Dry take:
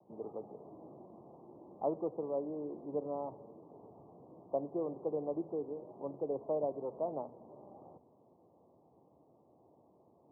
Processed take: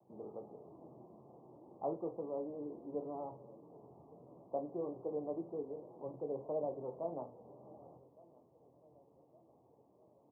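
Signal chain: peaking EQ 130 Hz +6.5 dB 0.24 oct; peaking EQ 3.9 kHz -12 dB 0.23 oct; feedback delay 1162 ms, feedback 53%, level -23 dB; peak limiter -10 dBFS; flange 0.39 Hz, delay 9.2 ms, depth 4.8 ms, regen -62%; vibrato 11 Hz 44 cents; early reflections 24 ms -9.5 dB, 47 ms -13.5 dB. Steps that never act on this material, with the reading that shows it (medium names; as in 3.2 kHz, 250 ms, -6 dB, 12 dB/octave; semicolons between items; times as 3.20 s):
peaking EQ 3.9 kHz: input has nothing above 1.1 kHz; peak limiter -10 dBFS: peak at its input -22.0 dBFS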